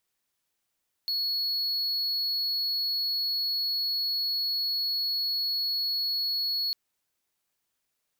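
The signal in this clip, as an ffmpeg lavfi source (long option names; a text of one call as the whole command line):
ffmpeg -f lavfi -i "aevalsrc='0.0631*(1-4*abs(mod(4360*t+0.25,1)-0.5))':duration=5.65:sample_rate=44100" out.wav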